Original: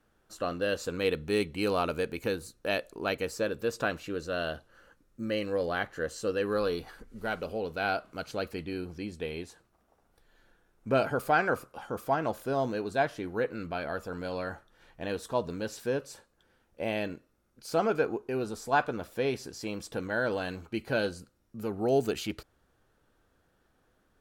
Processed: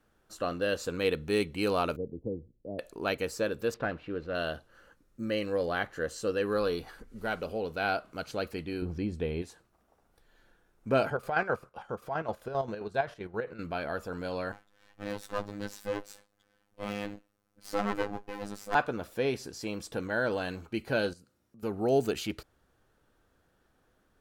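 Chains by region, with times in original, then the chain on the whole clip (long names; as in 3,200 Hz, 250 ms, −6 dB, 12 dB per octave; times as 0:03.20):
0:01.96–0:02.79: Gaussian smoothing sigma 17 samples + multiband upward and downward expander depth 40%
0:03.74–0:04.35: variable-slope delta modulation 64 kbit/s + high-frequency loss of the air 380 metres
0:08.82–0:09.42: spectral tilt −2.5 dB per octave + one half of a high-frequency compander encoder only
0:11.10–0:13.59: low-pass filter 3,400 Hz 6 dB per octave + parametric band 280 Hz −11.5 dB 0.33 octaves + square-wave tremolo 7.6 Hz, depth 60%
0:14.52–0:18.75: lower of the sound and its delayed copy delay 3.9 ms + phases set to zero 102 Hz
0:21.13–0:21.63: high-pass filter 87 Hz + downward compressor 3 to 1, threshold −57 dBFS
whole clip: no processing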